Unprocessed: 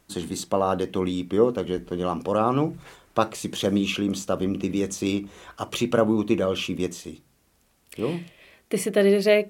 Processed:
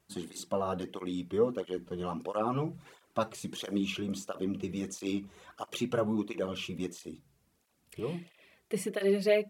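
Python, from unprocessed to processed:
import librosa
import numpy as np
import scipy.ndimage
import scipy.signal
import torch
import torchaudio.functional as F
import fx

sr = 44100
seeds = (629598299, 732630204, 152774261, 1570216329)

y = fx.low_shelf(x, sr, hz=220.0, db=7.0, at=(7.0, 8.0))
y = fx.flanger_cancel(y, sr, hz=1.5, depth_ms=4.2)
y = y * librosa.db_to_amplitude(-6.5)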